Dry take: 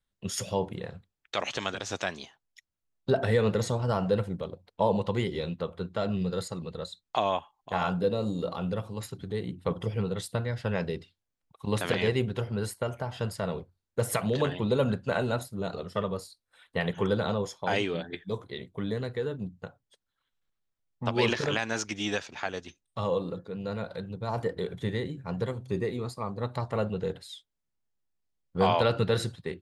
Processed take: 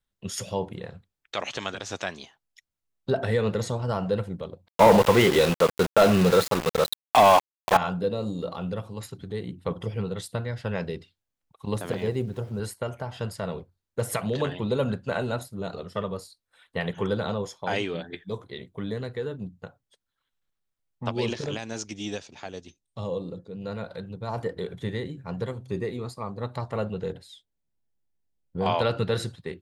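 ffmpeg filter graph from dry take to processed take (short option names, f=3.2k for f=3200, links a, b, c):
-filter_complex "[0:a]asettb=1/sr,asplit=3[a][b][c];[a]atrim=end=4.684[d];[b]atrim=start=4.68:end=7.77,asetpts=PTS-STARTPTS,afade=t=in:d=0.004:c=qsin,afade=t=out:st=3.086:d=0.004:c=qsin,acontrast=81,asplit=2[e][f];[f]highpass=f=720:p=1,volume=20dB,asoftclip=type=tanh:threshold=-6.5dB[g];[e][g]amix=inputs=2:normalize=0,lowpass=f=2k:p=1,volume=-6dB,aeval=exprs='val(0)*gte(abs(val(0)),0.0631)':c=same[h];[c]atrim=start=7.766[i];[d][h]acrossfade=d=0.004:c1=hsin:c2=qsin[j];[j][i]acrossfade=d=0.004:c1=qsin:c2=hsin,asettb=1/sr,asplit=3[k][l][m];[k]atrim=end=11.744[n];[l]atrim=start=11.74:end=12.6,asetpts=PTS-STARTPTS,afade=t=in:d=0.004:c=qsin,afade=t=out:st=0.856:d=0.004:c=qsin,highpass=49,equalizer=f=2.6k:w=0.58:g=-10.5,aeval=exprs='val(0)*gte(abs(val(0)),0.00316)':c=same[o];[m]atrim=start=12.596[p];[n][o]acrossfade=d=0.004:c1=hsin:c2=qsin[q];[q][p]acrossfade=d=0.004:c1=qsin:c2=hsin,asettb=1/sr,asplit=3[r][s][t];[r]atrim=end=21.124[u];[s]atrim=start=21.12:end=23.62,asetpts=PTS-STARTPTS,afade=t=in:d=0.004:c=qsin,afade=t=out:st=2.496:d=0.004:c=qsin,lowpass=f=10k:w=0.5412,lowpass=f=10k:w=1.3066,equalizer=f=1.5k:w=0.7:g=-10.5[v];[t]atrim=start=23.616[w];[u][v]acrossfade=d=0.004:c1=hsin:c2=qsin[x];[x][w]acrossfade=d=0.004:c1=qsin:c2=hsin,asettb=1/sr,asplit=3[y][z][aa];[y]atrim=end=27.124[ab];[z]atrim=start=27.12:end=28.66,asetpts=PTS-STARTPTS,afade=t=in:d=0.004:c=qsin,afade=t=out:st=1.536:d=0.004:c=qsin,tiltshelf=f=890:g=4.5,bandreject=f=1.2k:w=5.1,acompressor=threshold=-33dB:ratio=1.5:attack=3.2:release=140:knee=1:detection=peak[ac];[aa]atrim=start=28.656[ad];[ab][ac]acrossfade=d=0.004:c1=hsin:c2=qsin[ae];[ae][ad]acrossfade=d=0.004:c1=qsin:c2=hsin"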